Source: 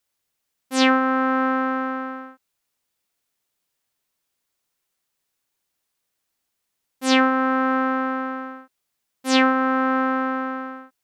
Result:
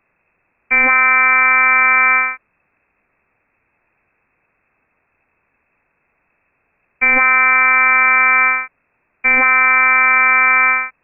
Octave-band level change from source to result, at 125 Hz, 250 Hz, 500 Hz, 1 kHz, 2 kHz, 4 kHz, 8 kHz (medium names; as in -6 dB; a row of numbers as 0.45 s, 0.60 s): no reading, -12.5 dB, -5.0 dB, +7.5 dB, +16.5 dB, under -10 dB, under -40 dB